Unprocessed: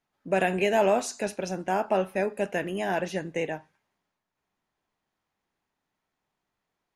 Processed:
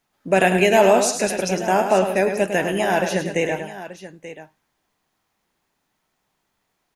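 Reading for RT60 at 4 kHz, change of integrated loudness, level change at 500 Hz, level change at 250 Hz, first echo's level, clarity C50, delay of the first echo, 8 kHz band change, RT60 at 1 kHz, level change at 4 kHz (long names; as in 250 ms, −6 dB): no reverb audible, +8.5 dB, +8.5 dB, +8.5 dB, −8.0 dB, no reverb audible, 104 ms, +13.0 dB, no reverb audible, +10.5 dB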